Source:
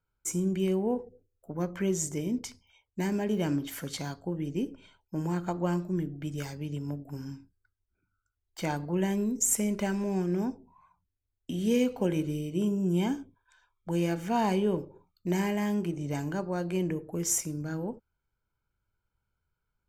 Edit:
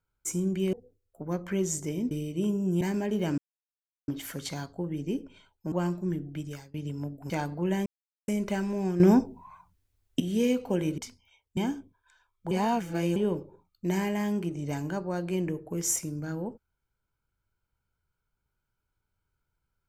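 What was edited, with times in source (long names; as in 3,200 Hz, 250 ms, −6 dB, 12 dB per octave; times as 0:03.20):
0:00.73–0:01.02: remove
0:02.40–0:02.99: swap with 0:12.29–0:12.99
0:03.56: splice in silence 0.70 s
0:05.20–0:05.59: remove
0:06.24–0:06.61: fade out, to −22.5 dB
0:07.17–0:08.61: remove
0:09.17–0:09.59: silence
0:10.31–0:11.51: clip gain +11 dB
0:13.93–0:14.58: reverse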